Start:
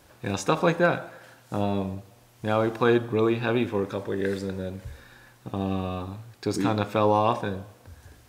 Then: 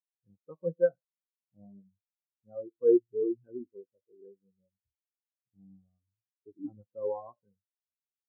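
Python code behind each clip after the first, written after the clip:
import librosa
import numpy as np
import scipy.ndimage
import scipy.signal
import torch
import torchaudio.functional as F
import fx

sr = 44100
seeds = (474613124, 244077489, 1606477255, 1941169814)

y = fx.spectral_expand(x, sr, expansion=4.0)
y = y * 10.0 ** (-5.5 / 20.0)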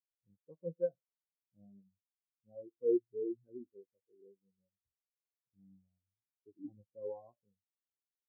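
y = np.convolve(x, np.full(35, 1.0 / 35))[:len(x)]
y = y * 10.0 ** (-6.5 / 20.0)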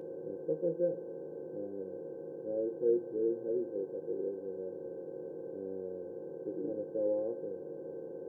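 y = fx.bin_compress(x, sr, power=0.2)
y = fx.doubler(y, sr, ms=13.0, db=-11.5)
y = y * 10.0 ** (-2.0 / 20.0)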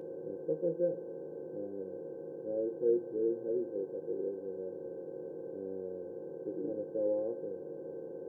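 y = x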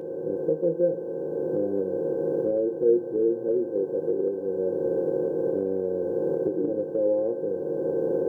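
y = fx.recorder_agc(x, sr, target_db=-25.5, rise_db_per_s=13.0, max_gain_db=30)
y = y * 10.0 ** (8.5 / 20.0)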